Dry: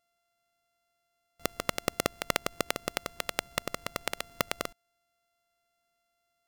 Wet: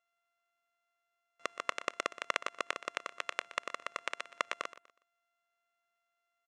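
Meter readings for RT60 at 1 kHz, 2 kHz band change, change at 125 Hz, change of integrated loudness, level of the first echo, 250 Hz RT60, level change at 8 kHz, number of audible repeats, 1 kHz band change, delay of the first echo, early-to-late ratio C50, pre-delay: none, -1.5 dB, under -25 dB, -4.5 dB, -16.0 dB, none, -11.0 dB, 2, -2.0 dB, 0.122 s, none, none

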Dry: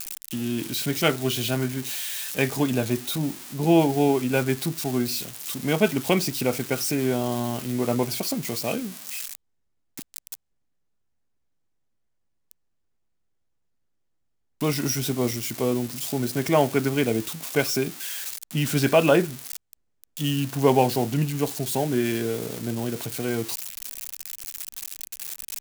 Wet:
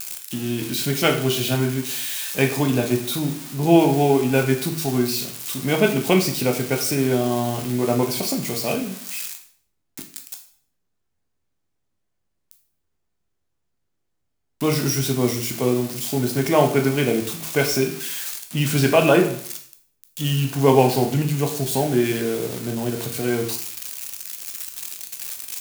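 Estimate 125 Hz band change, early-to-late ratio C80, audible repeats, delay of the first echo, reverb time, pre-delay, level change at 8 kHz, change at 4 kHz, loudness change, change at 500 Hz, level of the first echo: +4.5 dB, 12.0 dB, none, none, 0.55 s, 5 ms, +3.5 dB, +3.5 dB, +3.5 dB, +4.0 dB, none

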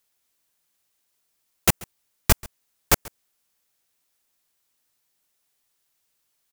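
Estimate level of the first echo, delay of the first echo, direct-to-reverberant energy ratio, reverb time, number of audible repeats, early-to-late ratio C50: -22.5 dB, 0.136 s, none, none, 1, none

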